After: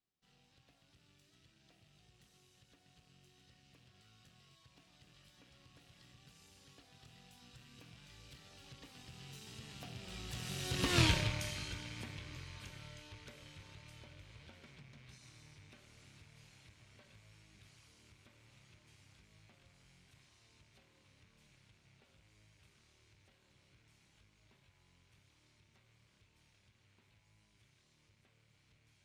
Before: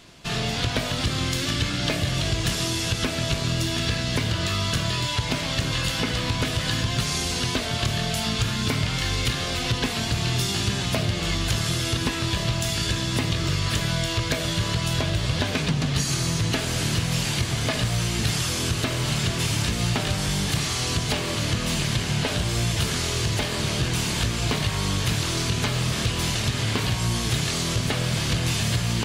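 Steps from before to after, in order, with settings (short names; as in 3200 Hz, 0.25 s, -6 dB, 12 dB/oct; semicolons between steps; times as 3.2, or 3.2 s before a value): rattling part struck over -29 dBFS, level -19 dBFS; Doppler pass-by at 11.01, 35 m/s, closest 3.1 m; gain -2.5 dB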